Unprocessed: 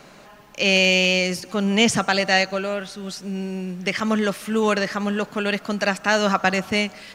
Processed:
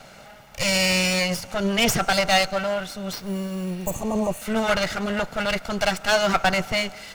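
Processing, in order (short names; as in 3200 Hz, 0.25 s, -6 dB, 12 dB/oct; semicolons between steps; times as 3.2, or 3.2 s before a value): minimum comb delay 1.4 ms; 3.13–3.95 sample-rate reducer 10000 Hz, jitter 0%; 3.73–4.39 spectral repair 1200–6000 Hz before; gain +2.5 dB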